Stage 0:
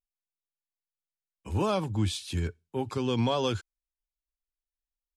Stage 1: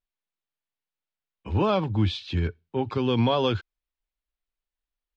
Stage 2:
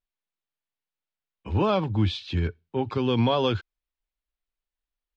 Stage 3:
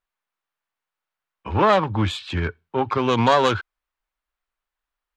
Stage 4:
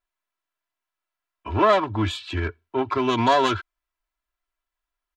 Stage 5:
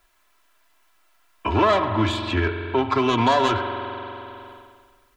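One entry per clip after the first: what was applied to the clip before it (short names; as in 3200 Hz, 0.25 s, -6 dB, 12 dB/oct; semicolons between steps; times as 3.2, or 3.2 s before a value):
LPF 4100 Hz 24 dB/oct; gain +4.5 dB
nothing audible
self-modulated delay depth 0.15 ms; bell 1200 Hz +13 dB 2.1 oct
comb 3 ms, depth 80%; gain -3.5 dB
spring tank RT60 1.5 s, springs 45 ms, chirp 75 ms, DRR 7.5 dB; three-band squash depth 70%; gain +1.5 dB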